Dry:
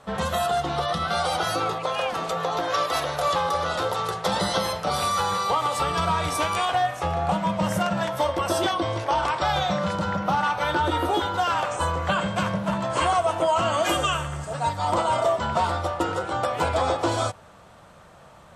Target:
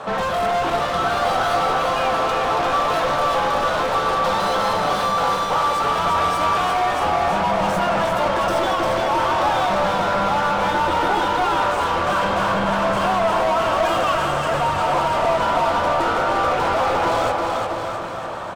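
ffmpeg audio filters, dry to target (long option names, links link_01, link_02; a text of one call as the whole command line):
ffmpeg -i in.wav -filter_complex "[0:a]bandreject=frequency=2000:width=12,asplit=2[link_01][link_02];[link_02]highpass=frequency=720:poles=1,volume=32dB,asoftclip=type=tanh:threshold=-10.5dB[link_03];[link_01][link_03]amix=inputs=2:normalize=0,lowpass=frequency=1100:poles=1,volume=-6dB,aecho=1:1:350|665|948.5|1204|1433:0.631|0.398|0.251|0.158|0.1,acrossover=split=620|2700[link_04][link_05][link_06];[link_04]aeval=exprs='clip(val(0),-1,0.0596)':channel_layout=same[link_07];[link_07][link_05][link_06]amix=inputs=3:normalize=0,volume=-2dB" out.wav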